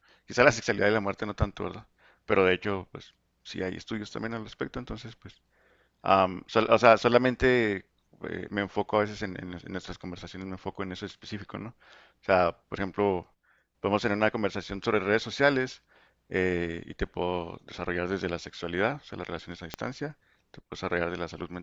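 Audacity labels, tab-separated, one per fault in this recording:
19.740000	19.740000	pop -16 dBFS

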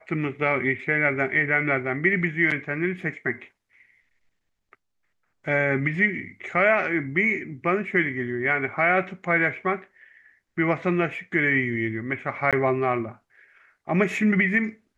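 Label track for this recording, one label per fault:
12.510000	12.530000	dropout 17 ms

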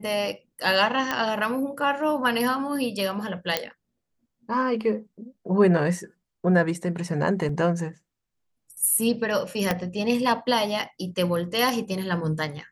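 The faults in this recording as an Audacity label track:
1.110000	1.110000	pop -10 dBFS
3.570000	3.570000	pop -6 dBFS
7.490000	7.490000	dropout 2.7 ms
9.710000	9.710000	pop -8 dBFS

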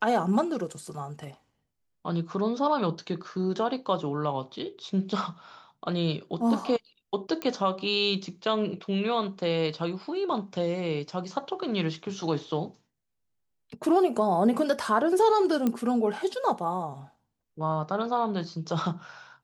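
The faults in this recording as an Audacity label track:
7.420000	7.420000	pop -17 dBFS
15.670000	15.670000	pop -14 dBFS

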